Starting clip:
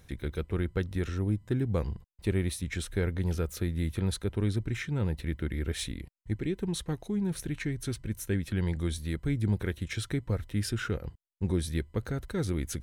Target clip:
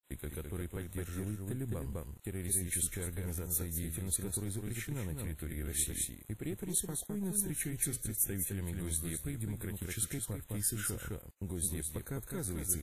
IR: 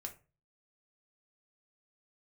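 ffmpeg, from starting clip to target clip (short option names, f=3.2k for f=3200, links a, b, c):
-af "aeval=exprs='if(lt(val(0),0),0.708*val(0),val(0))':c=same,aecho=1:1:208:0.531,alimiter=level_in=1dB:limit=-24dB:level=0:latency=1:release=208,volume=-1dB,agate=range=-33dB:threshold=-39dB:ratio=3:detection=peak,aeval=exprs='val(0)*gte(abs(val(0)),0.00188)':c=same,aexciter=amount=11.8:drive=1.7:freq=7.5k,volume=-3.5dB" -ar 32000 -c:a wmav2 -b:a 64k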